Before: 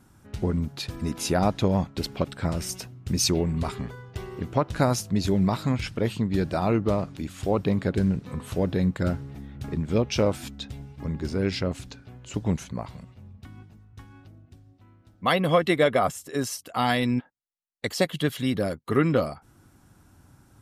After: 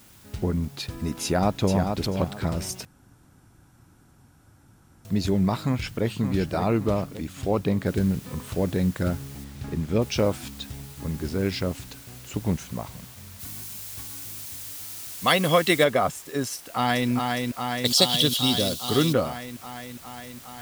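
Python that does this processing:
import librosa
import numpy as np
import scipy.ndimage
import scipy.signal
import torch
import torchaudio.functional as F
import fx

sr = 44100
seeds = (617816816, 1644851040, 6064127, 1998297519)

y = fx.echo_throw(x, sr, start_s=1.23, length_s=0.77, ms=440, feedback_pct=20, wet_db=-5.5)
y = fx.echo_throw(y, sr, start_s=5.62, length_s=0.44, ms=570, feedback_pct=45, wet_db=-8.0)
y = fx.noise_floor_step(y, sr, seeds[0], at_s=7.86, before_db=-54, after_db=-47, tilt_db=0.0)
y = fx.high_shelf(y, sr, hz=6400.0, db=-8.0, at=(9.44, 10.02))
y = fx.high_shelf(y, sr, hz=fx.line((13.39, 4400.0), (15.83, 2500.0)), db=10.5, at=(13.39, 15.83), fade=0.02)
y = fx.echo_throw(y, sr, start_s=16.54, length_s=0.56, ms=410, feedback_pct=80, wet_db=-3.5)
y = fx.high_shelf_res(y, sr, hz=2700.0, db=9.5, q=3.0, at=(17.85, 19.13))
y = fx.edit(y, sr, fx.room_tone_fill(start_s=2.85, length_s=2.2), tone=tone)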